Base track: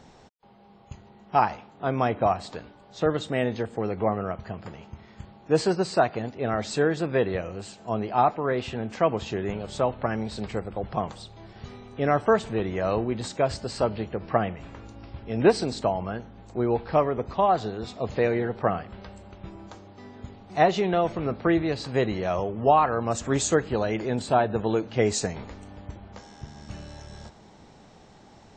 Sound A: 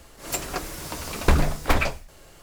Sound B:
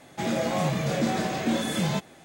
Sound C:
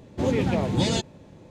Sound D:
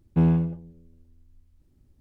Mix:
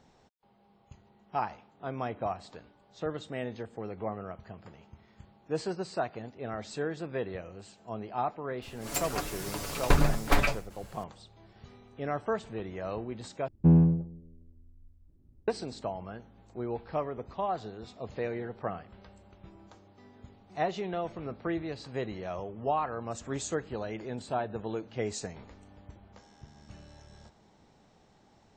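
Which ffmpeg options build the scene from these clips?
ffmpeg -i bed.wav -i cue0.wav -i cue1.wav -i cue2.wav -i cue3.wav -filter_complex "[0:a]volume=-10.5dB[link_01];[1:a]aecho=1:1:7:0.49[link_02];[4:a]tiltshelf=frequency=1300:gain=9.5[link_03];[link_01]asplit=2[link_04][link_05];[link_04]atrim=end=13.484[link_06];[link_03]atrim=end=2,asetpts=PTS-STARTPTS,volume=-9dB[link_07];[link_05]atrim=start=15.476[link_08];[link_02]atrim=end=2.42,asetpts=PTS-STARTPTS,volume=-4.5dB,afade=type=in:duration=0.004:curve=hsin,afade=type=out:start_time=2.416:duration=0.004:curve=hsin,adelay=8620[link_09];[link_06][link_07]acrossfade=duration=0.004:curve1=hsin:curve2=hsin[link_10];[link_10][link_08]acrossfade=duration=0.004:curve1=hsin:curve2=hsin[link_11];[link_11][link_09]amix=inputs=2:normalize=0" out.wav

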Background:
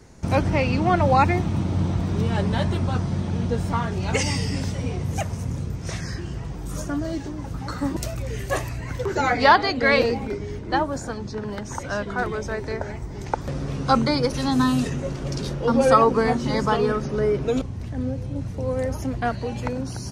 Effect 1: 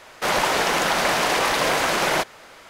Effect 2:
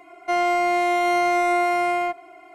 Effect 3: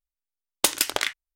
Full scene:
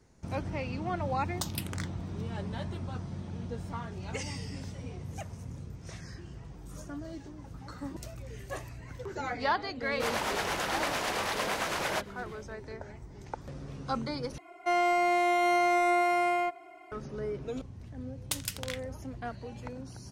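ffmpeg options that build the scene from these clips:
ffmpeg -i bed.wav -i cue0.wav -i cue1.wav -i cue2.wav -filter_complex "[3:a]asplit=2[link_01][link_02];[0:a]volume=-14dB[link_03];[link_01]asplit=2[link_04][link_05];[link_05]afreqshift=-2.3[link_06];[link_04][link_06]amix=inputs=2:normalize=1[link_07];[1:a]acrossover=split=490[link_08][link_09];[link_08]aeval=exprs='val(0)*(1-0.5/2+0.5/2*cos(2*PI*8.9*n/s))':channel_layout=same[link_10];[link_09]aeval=exprs='val(0)*(1-0.5/2-0.5/2*cos(2*PI*8.9*n/s))':channel_layout=same[link_11];[link_10][link_11]amix=inputs=2:normalize=0[link_12];[link_02]tiltshelf=frequency=970:gain=-4.5[link_13];[link_03]asplit=2[link_14][link_15];[link_14]atrim=end=14.384[link_16];[2:a]atrim=end=2.54,asetpts=PTS-STARTPTS,volume=-5.5dB[link_17];[link_15]atrim=start=16.916[link_18];[link_07]atrim=end=1.35,asetpts=PTS-STARTPTS,volume=-12.5dB,afade=type=in:duration=0.004:curve=hsin,afade=type=out:start_time=1.346:duration=0.004:curve=hsin,adelay=770[link_19];[link_12]atrim=end=2.69,asetpts=PTS-STARTPTS,volume=-9dB,afade=type=in:duration=0.1,afade=type=out:start_time=2.59:duration=0.1,adelay=431298S[link_20];[link_13]atrim=end=1.35,asetpts=PTS-STARTPTS,volume=-17dB,afade=type=in:duration=0.004:curve=hsin,afade=type=out:start_time=1.346:duration=0.004:curve=hsin,adelay=17670[link_21];[link_16][link_17]acrossfade=duration=0.004:curve1=hsin:curve2=hsin[link_22];[link_22][link_18]acrossfade=duration=0.004:curve1=hsin:curve2=hsin[link_23];[link_23][link_19][link_20][link_21]amix=inputs=4:normalize=0" out.wav

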